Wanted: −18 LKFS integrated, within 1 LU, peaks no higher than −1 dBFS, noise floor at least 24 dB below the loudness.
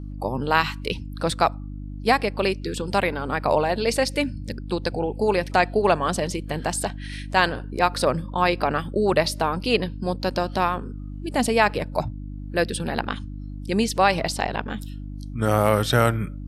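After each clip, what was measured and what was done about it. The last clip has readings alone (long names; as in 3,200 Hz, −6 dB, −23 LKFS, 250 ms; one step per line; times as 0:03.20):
mains hum 50 Hz; hum harmonics up to 300 Hz; level of the hum −31 dBFS; integrated loudness −23.5 LKFS; sample peak −3.5 dBFS; target loudness −18.0 LKFS
→ hum removal 50 Hz, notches 6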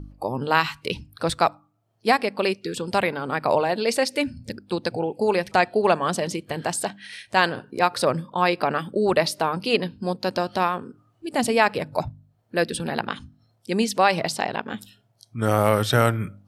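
mains hum none found; integrated loudness −23.5 LKFS; sample peak −3.5 dBFS; target loudness −18.0 LKFS
→ level +5.5 dB
brickwall limiter −1 dBFS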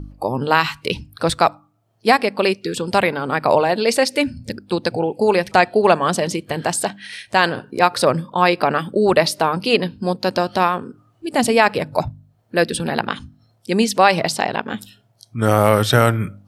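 integrated loudness −18.5 LKFS; sample peak −1.0 dBFS; background noise floor −59 dBFS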